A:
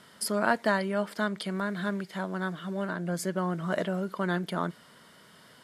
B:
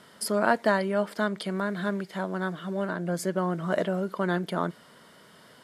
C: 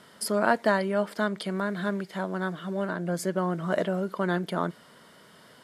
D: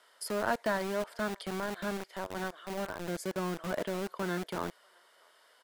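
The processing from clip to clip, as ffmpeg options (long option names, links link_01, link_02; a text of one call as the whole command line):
ffmpeg -i in.wav -af "equalizer=frequency=490:width=0.64:gain=4" out.wav
ffmpeg -i in.wav -af anull out.wav
ffmpeg -i in.wav -filter_complex "[0:a]asplit=2[link_01][link_02];[link_02]adelay=641.4,volume=-28dB,highshelf=frequency=4000:gain=-14.4[link_03];[link_01][link_03]amix=inputs=2:normalize=0,acrossover=split=450|4500[link_04][link_05][link_06];[link_04]acrusher=bits=4:mix=0:aa=0.000001[link_07];[link_07][link_05][link_06]amix=inputs=3:normalize=0,volume=-8dB" out.wav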